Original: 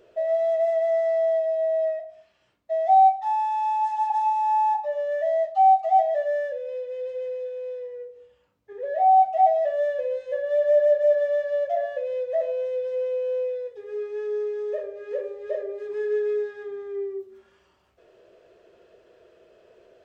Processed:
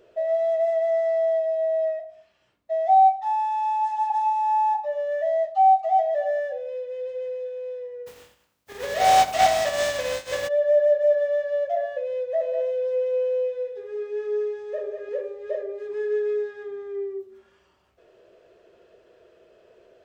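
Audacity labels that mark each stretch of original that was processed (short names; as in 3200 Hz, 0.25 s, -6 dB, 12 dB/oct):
5.600000	6.100000	echo throw 0.29 s, feedback 20%, level -15.5 dB
8.060000	10.470000	spectral contrast lowered exponent 0.46
12.260000	15.090000	echo 0.195 s -7 dB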